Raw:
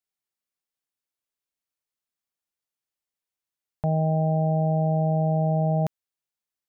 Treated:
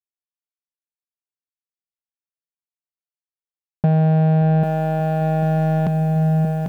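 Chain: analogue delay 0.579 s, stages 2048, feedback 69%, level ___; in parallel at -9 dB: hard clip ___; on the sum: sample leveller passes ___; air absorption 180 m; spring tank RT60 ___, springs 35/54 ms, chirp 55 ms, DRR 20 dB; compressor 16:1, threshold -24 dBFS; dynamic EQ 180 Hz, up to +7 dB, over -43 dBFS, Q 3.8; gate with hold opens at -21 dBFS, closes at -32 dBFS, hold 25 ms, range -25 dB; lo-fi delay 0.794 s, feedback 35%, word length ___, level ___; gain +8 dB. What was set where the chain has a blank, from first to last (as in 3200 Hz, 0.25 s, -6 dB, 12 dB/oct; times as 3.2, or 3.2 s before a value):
-13 dB, -32 dBFS, 1, 2.9 s, 9-bit, -5 dB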